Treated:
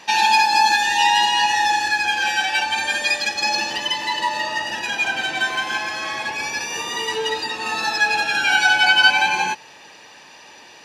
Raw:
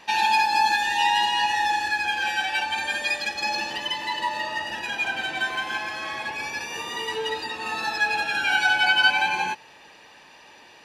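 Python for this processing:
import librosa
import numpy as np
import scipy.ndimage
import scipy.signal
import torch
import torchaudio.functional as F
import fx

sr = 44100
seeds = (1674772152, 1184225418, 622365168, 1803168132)

y = scipy.signal.sosfilt(scipy.signal.butter(2, 80.0, 'highpass', fs=sr, output='sos'), x)
y = fx.peak_eq(y, sr, hz=6000.0, db=6.0, octaves=0.85)
y = y * 10.0 ** (4.5 / 20.0)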